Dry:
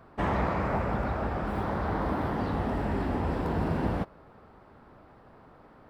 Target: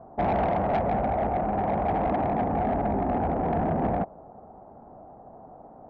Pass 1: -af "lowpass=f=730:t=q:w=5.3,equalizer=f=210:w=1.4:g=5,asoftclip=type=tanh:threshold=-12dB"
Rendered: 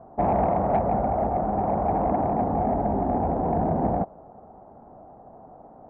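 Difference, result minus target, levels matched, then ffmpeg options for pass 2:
soft clip: distortion -10 dB
-af "lowpass=f=730:t=q:w=5.3,equalizer=f=210:w=1.4:g=5,asoftclip=type=tanh:threshold=-19.5dB"

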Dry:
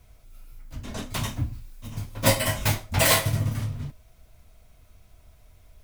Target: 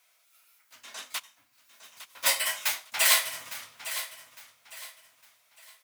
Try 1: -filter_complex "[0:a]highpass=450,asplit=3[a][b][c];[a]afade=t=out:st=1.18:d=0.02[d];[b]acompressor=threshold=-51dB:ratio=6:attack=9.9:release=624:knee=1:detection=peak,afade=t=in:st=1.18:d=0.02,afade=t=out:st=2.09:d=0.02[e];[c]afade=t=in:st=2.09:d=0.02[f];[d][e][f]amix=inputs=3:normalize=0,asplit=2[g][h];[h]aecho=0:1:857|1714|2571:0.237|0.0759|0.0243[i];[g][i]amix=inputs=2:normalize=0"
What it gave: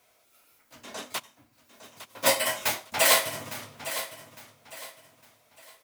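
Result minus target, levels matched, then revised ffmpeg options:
500 Hz band +11.5 dB
-filter_complex "[0:a]highpass=1.3k,asplit=3[a][b][c];[a]afade=t=out:st=1.18:d=0.02[d];[b]acompressor=threshold=-51dB:ratio=6:attack=9.9:release=624:knee=1:detection=peak,afade=t=in:st=1.18:d=0.02,afade=t=out:st=2.09:d=0.02[e];[c]afade=t=in:st=2.09:d=0.02[f];[d][e][f]amix=inputs=3:normalize=0,asplit=2[g][h];[h]aecho=0:1:857|1714|2571:0.237|0.0759|0.0243[i];[g][i]amix=inputs=2:normalize=0"

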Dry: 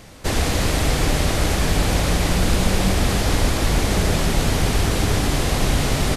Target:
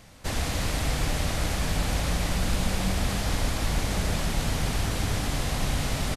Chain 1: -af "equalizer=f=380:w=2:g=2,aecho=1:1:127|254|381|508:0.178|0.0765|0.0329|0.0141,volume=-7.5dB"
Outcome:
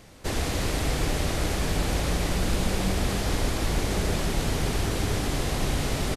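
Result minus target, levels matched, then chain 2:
500 Hz band +3.5 dB
-af "equalizer=f=380:w=2:g=-6,aecho=1:1:127|254|381|508:0.178|0.0765|0.0329|0.0141,volume=-7.5dB"

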